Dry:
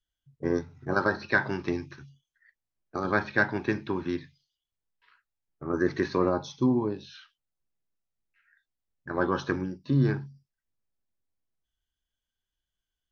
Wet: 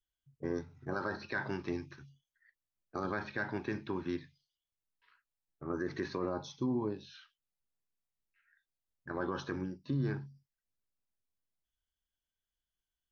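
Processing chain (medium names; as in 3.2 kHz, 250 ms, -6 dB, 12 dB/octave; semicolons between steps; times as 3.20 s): peak limiter -19 dBFS, peak gain reduction 8.5 dB; trim -6 dB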